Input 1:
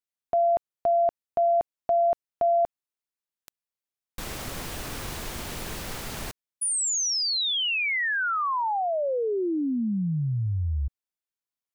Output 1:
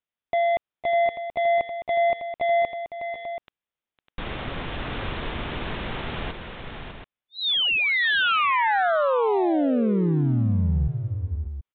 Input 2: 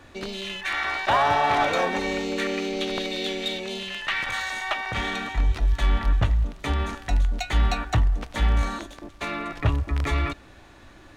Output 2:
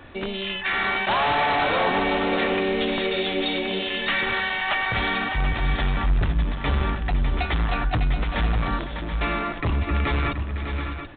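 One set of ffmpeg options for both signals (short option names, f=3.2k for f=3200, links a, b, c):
-af "aresample=8000,asoftclip=type=hard:threshold=-24.5dB,aresample=44100,aecho=1:1:506|602|730:0.224|0.376|0.316,volume=4.5dB"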